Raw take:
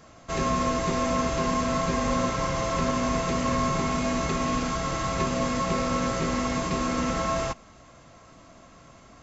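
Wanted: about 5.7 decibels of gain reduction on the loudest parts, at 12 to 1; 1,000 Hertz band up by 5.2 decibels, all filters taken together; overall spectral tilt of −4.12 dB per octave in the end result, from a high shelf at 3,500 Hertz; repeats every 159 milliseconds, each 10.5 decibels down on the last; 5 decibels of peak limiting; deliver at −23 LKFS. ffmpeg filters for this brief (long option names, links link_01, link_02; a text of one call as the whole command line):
ffmpeg -i in.wav -af "equalizer=frequency=1000:width_type=o:gain=5.5,highshelf=frequency=3500:gain=4,acompressor=threshold=-24dB:ratio=12,alimiter=limit=-20.5dB:level=0:latency=1,aecho=1:1:159|318|477:0.299|0.0896|0.0269,volume=6.5dB" out.wav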